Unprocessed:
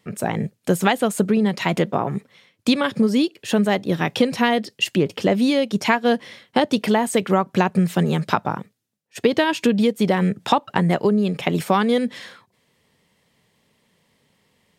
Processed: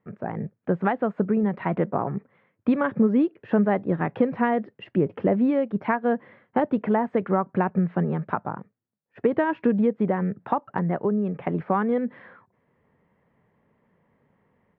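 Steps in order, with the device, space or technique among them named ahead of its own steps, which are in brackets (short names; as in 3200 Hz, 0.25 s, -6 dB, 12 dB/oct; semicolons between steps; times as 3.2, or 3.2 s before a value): 4.75–5.34 dynamic EQ 1400 Hz, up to -4 dB, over -33 dBFS, Q 1; action camera in a waterproof case (LPF 1700 Hz 24 dB/oct; AGC gain up to 7.5 dB; gain -7.5 dB; AAC 64 kbps 32000 Hz)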